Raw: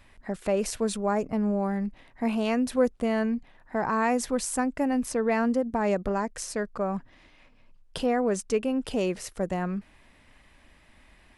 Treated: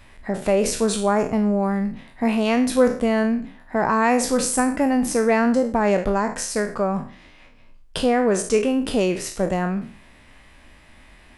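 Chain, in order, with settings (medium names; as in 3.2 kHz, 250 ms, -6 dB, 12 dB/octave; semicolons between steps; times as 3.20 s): spectral sustain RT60 0.44 s; trim +6 dB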